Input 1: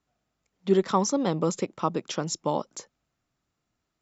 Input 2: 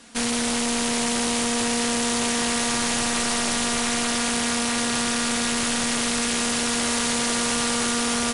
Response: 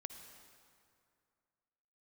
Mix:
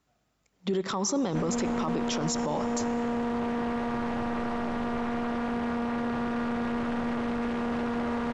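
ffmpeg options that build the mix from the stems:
-filter_complex "[0:a]acompressor=threshold=-24dB:ratio=6,aeval=exprs='0.178*(abs(mod(val(0)/0.178+3,4)-2)-1)':channel_layout=same,volume=-4.5dB,asplit=2[link_01][link_02];[link_02]volume=-4dB[link_03];[1:a]lowpass=1100,alimiter=level_in=6.5dB:limit=-24dB:level=0:latency=1,volume=-6.5dB,adelay=1200,volume=0dB[link_04];[2:a]atrim=start_sample=2205[link_05];[link_03][link_05]afir=irnorm=-1:irlink=0[link_06];[link_01][link_04][link_06]amix=inputs=3:normalize=0,acontrast=79,alimiter=limit=-20.5dB:level=0:latency=1:release=13"

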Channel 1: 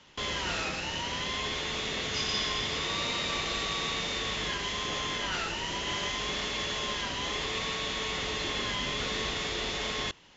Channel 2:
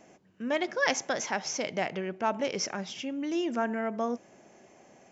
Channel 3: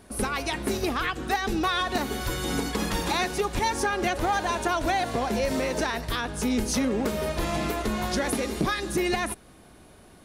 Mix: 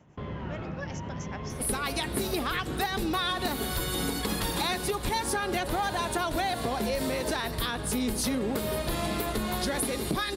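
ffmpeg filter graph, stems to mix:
ffmpeg -i stem1.wav -i stem2.wav -i stem3.wav -filter_complex "[0:a]lowpass=1200,equalizer=frequency=130:width_type=o:width=2:gain=14.5,volume=-3.5dB[link_01];[1:a]tremolo=f=7.4:d=0.81,volume=-8.5dB[link_02];[2:a]acontrast=58,aexciter=amount=1.7:drive=2.5:freq=3400,adelay=1500,volume=-1.5dB[link_03];[link_01][link_02][link_03]amix=inputs=3:normalize=0,acompressor=threshold=-33dB:ratio=2" out.wav

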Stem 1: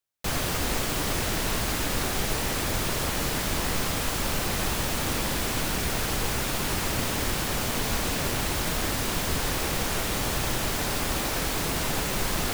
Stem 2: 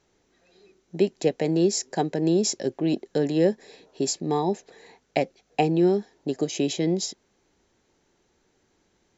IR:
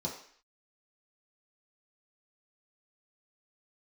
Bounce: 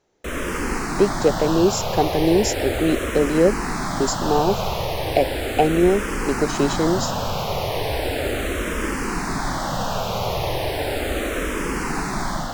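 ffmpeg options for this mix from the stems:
-filter_complex "[0:a]aemphasis=mode=reproduction:type=cd,asplit=2[link_01][link_02];[link_02]afreqshift=-0.36[link_03];[link_01][link_03]amix=inputs=2:normalize=1,volume=0.5dB[link_04];[1:a]volume=-3.5dB[link_05];[link_04][link_05]amix=inputs=2:normalize=0,equalizer=frequency=610:width=0.76:gain=6,dynaudnorm=framelen=140:gausssize=5:maxgain=4.5dB"

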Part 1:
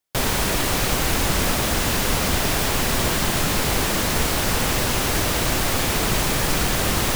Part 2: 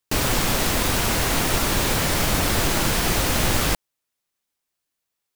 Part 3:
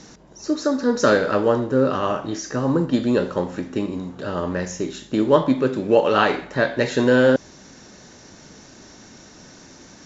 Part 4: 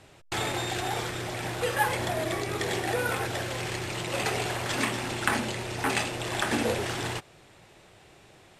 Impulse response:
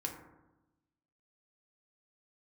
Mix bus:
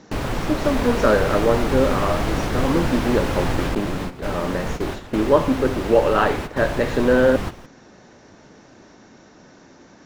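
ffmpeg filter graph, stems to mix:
-filter_complex "[0:a]adelay=500,volume=-3.5dB[link_01];[1:a]volume=-1dB[link_02];[2:a]lowshelf=frequency=220:gain=-8,volume=2dB,asplit=2[link_03][link_04];[3:a]acompressor=threshold=-46dB:ratio=2,adelay=350,volume=-2dB[link_05];[link_04]apad=whole_len=337773[link_06];[link_01][link_06]sidechaingate=range=-15dB:threshold=-31dB:ratio=16:detection=peak[link_07];[link_07][link_02][link_03][link_05]amix=inputs=4:normalize=0,lowpass=frequency=1300:poles=1"

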